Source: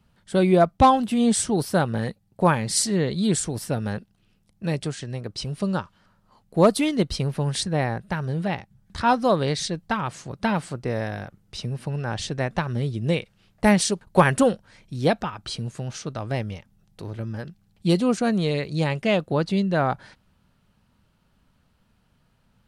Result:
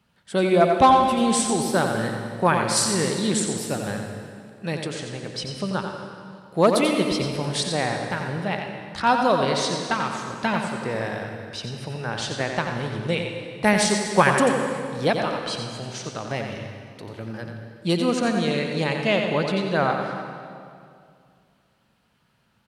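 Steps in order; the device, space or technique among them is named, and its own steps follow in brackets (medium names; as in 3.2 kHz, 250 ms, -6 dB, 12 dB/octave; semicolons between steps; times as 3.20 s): PA in a hall (high-pass 190 Hz 6 dB/octave; peaking EQ 2.3 kHz +3.5 dB 2.4 oct; delay 89 ms -7 dB; reverberation RT60 2.3 s, pre-delay 103 ms, DRR 5.5 dB); trim -1 dB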